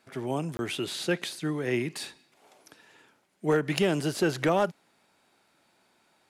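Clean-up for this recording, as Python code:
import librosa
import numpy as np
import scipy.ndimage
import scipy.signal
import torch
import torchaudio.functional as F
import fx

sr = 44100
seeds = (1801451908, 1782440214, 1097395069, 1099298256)

y = fx.fix_declip(x, sr, threshold_db=-16.5)
y = fx.fix_interpolate(y, sr, at_s=(0.57,), length_ms=20.0)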